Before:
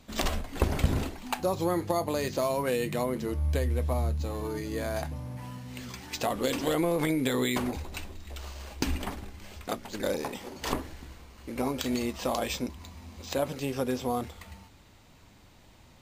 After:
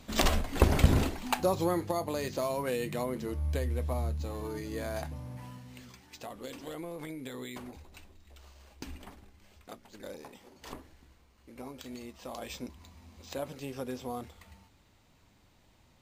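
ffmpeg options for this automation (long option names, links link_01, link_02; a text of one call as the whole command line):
ffmpeg -i in.wav -af "volume=9dB,afade=type=out:start_time=1.13:duration=0.8:silence=0.446684,afade=type=out:start_time=5.37:duration=0.67:silence=0.316228,afade=type=in:start_time=12.23:duration=0.41:silence=0.501187" out.wav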